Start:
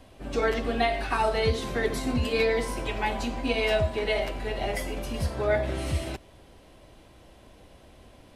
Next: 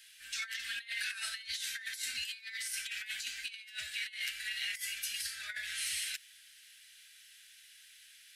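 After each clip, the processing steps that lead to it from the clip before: elliptic high-pass 1600 Hz, stop band 40 dB; high shelf 4700 Hz +10 dB; negative-ratio compressor -37 dBFS, ratio -0.5; gain -2 dB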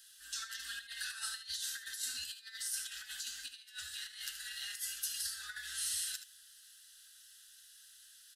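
fixed phaser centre 610 Hz, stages 6; echo 76 ms -10.5 dB; gain +2 dB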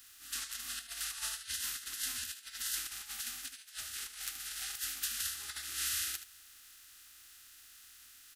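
spectral limiter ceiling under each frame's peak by 25 dB; gain +2.5 dB

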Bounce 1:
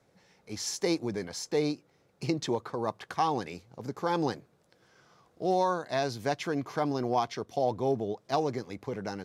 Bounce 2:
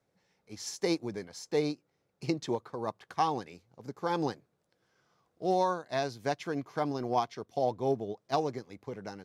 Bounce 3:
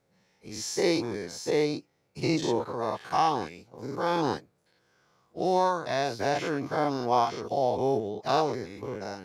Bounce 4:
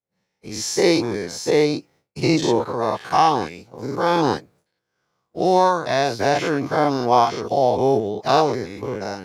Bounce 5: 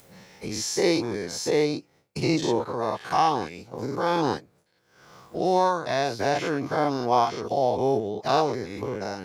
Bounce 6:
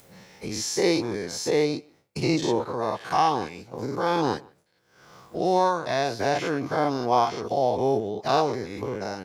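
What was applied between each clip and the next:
upward expander 1.5:1, over -44 dBFS
spectral dilation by 0.12 s
expander -56 dBFS; gain +8.5 dB
upward compressor, threshold -19 dBFS; gain -5.5 dB
speakerphone echo 0.15 s, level -24 dB

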